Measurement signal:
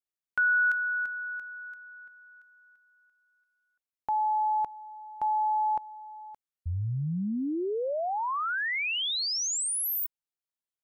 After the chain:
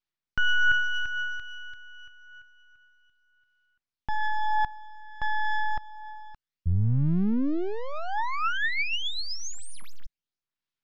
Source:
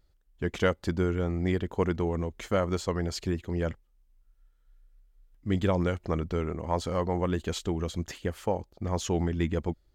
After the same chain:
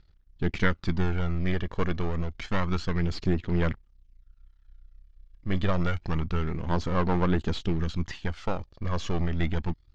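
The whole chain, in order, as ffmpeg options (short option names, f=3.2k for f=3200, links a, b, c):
-filter_complex "[0:a]aeval=exprs='if(lt(val(0),0),0.251*val(0),val(0))':c=same,lowpass=f=5.4k:w=0.5412,lowpass=f=5.4k:w=1.3066,equalizer=f=560:t=o:w=1.3:g=-9,acrossover=split=2600[a][b];[b]acompressor=threshold=-45dB:ratio=4:attack=1:release=60[c];[a][c]amix=inputs=2:normalize=0,aphaser=in_gain=1:out_gain=1:delay=1.8:decay=0.4:speed=0.28:type=sinusoidal,volume=6.5dB"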